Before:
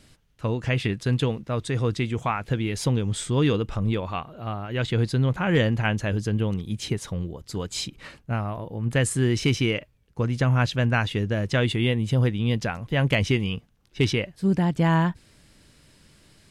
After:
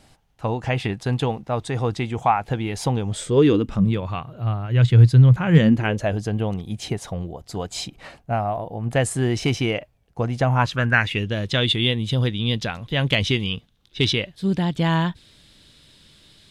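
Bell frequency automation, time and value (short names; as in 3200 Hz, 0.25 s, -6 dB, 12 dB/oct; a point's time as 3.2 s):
bell +14 dB 0.54 oct
3.04 s 790 Hz
4.05 s 120 Hz
5.47 s 120 Hz
6.08 s 720 Hz
10.46 s 720 Hz
11.35 s 3600 Hz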